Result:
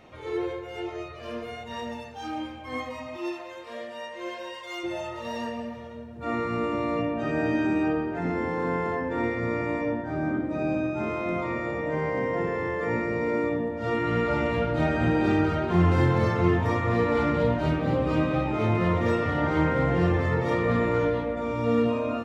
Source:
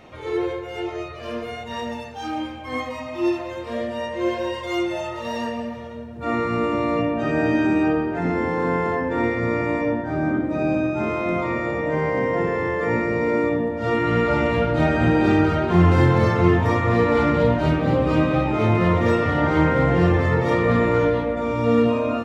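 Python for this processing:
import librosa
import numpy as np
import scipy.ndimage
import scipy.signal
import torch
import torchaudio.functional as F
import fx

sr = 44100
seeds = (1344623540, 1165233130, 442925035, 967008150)

y = fx.highpass(x, sr, hz=fx.line((3.16, 580.0), (4.83, 1200.0)), slope=6, at=(3.16, 4.83), fade=0.02)
y = F.gain(torch.from_numpy(y), -5.5).numpy()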